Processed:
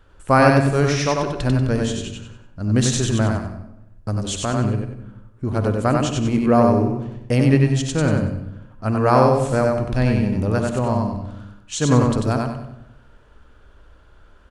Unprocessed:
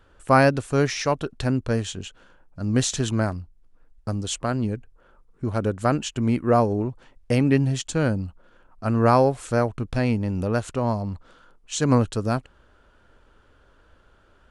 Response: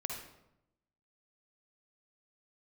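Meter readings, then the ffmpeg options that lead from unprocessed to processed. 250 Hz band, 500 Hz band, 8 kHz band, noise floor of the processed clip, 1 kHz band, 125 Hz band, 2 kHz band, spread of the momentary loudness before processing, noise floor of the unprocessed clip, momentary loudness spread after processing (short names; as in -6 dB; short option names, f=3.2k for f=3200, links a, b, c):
+4.5 dB, +4.0 dB, +3.5 dB, -49 dBFS, +3.5 dB, +5.5 dB, +3.5 dB, 13 LU, -58 dBFS, 16 LU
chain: -filter_complex "[0:a]aecho=1:1:94|188|282|376:0.708|0.241|0.0818|0.0278,asplit=2[a][b];[1:a]atrim=start_sample=2205,lowshelf=f=120:g=10.5[c];[b][c]afir=irnorm=-1:irlink=0,volume=-4dB[d];[a][d]amix=inputs=2:normalize=0,volume=-2.5dB"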